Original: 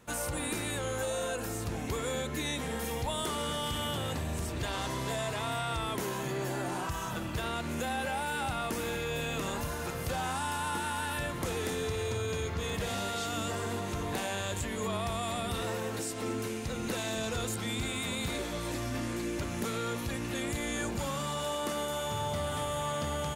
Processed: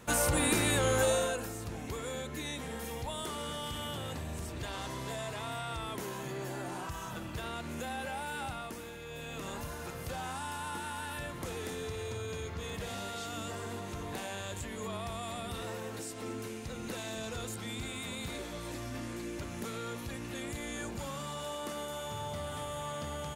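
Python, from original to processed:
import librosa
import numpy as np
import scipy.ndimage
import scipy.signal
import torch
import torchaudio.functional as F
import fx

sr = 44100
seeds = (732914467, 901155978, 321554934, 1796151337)

y = fx.gain(x, sr, db=fx.line((1.1, 6.0), (1.53, -5.0), (8.45, -5.0), (8.95, -12.0), (9.52, -5.5)))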